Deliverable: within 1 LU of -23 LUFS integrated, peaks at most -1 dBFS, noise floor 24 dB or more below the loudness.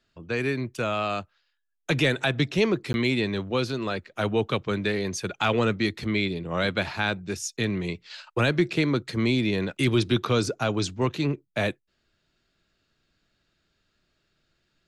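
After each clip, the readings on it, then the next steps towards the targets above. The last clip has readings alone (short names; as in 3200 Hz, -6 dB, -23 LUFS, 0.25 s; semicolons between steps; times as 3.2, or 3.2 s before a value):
dropouts 1; longest dropout 11 ms; loudness -26.5 LUFS; peak -11.5 dBFS; loudness target -23.0 LUFS
-> interpolate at 2.93, 11 ms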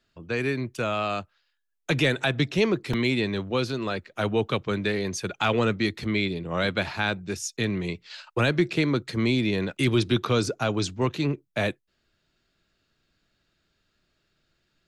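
dropouts 0; loudness -26.5 LUFS; peak -11.5 dBFS; loudness target -23.0 LUFS
-> gain +3.5 dB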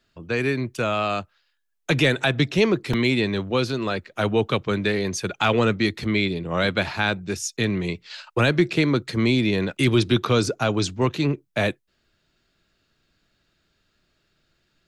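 loudness -23.0 LUFS; peak -8.0 dBFS; noise floor -70 dBFS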